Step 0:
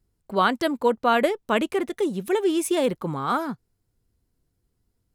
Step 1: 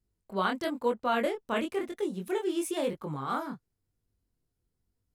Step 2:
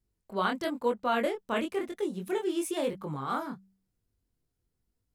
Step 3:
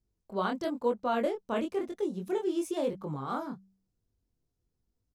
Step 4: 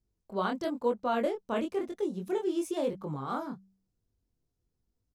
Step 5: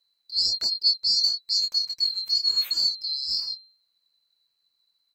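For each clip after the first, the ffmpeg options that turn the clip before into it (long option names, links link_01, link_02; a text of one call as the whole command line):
ffmpeg -i in.wav -af "flanger=delay=19.5:depth=7.4:speed=0.99,volume=-5dB" out.wav
ffmpeg -i in.wav -af "bandreject=frequency=96.02:width_type=h:width=4,bandreject=frequency=192.04:width_type=h:width=4" out.wav
ffmpeg -i in.wav -af "firequalizer=gain_entry='entry(610,0);entry(1900,-8);entry(5900,-1);entry(8800,-8)':delay=0.05:min_phase=1" out.wav
ffmpeg -i in.wav -af anull out.wav
ffmpeg -i in.wav -af "afftfilt=real='real(if(lt(b,736),b+184*(1-2*mod(floor(b/184),2)),b),0)':imag='imag(if(lt(b,736),b+184*(1-2*mod(floor(b/184),2)),b),0)':win_size=2048:overlap=0.75,volume=6.5dB" out.wav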